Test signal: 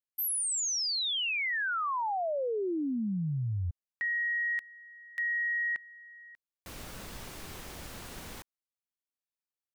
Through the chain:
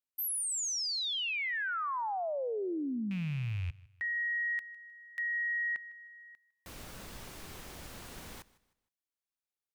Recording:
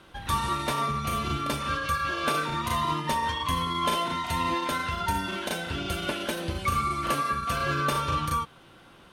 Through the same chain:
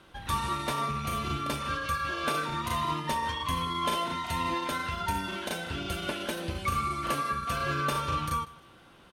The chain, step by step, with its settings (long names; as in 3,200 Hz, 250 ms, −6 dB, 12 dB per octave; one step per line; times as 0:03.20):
loose part that buzzes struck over −32 dBFS, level −33 dBFS
on a send: repeating echo 155 ms, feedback 34%, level −21 dB
on the sum: level −3 dB